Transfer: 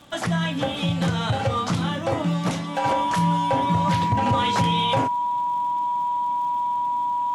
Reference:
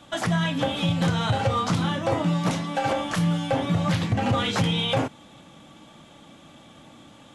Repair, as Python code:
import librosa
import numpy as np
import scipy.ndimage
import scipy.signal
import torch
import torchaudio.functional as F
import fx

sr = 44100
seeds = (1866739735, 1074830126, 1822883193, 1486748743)

y = fx.fix_declick_ar(x, sr, threshold=6.5)
y = fx.notch(y, sr, hz=970.0, q=30.0)